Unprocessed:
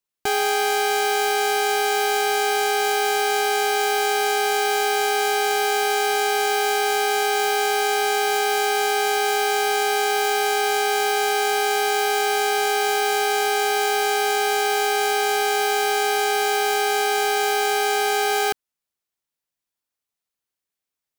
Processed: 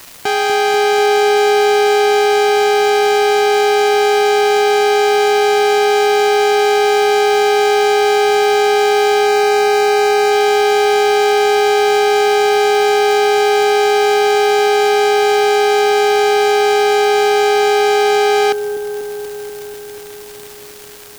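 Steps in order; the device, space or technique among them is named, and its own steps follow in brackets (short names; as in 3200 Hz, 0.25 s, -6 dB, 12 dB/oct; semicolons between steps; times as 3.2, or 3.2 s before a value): 78 rpm shellac record (BPF 130–5800 Hz; crackle 360/s -30 dBFS; white noise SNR 24 dB); 9.26–10.32 notch 3300 Hz, Q 7.7; dark delay 0.243 s, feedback 77%, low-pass 490 Hz, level -4 dB; gain +6 dB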